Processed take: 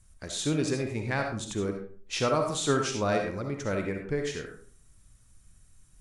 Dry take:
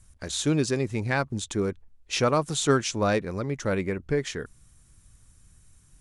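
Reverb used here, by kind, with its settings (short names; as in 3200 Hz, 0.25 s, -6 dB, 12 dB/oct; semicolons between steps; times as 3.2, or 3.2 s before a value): digital reverb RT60 0.47 s, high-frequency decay 0.6×, pre-delay 25 ms, DRR 3 dB; gain -4.5 dB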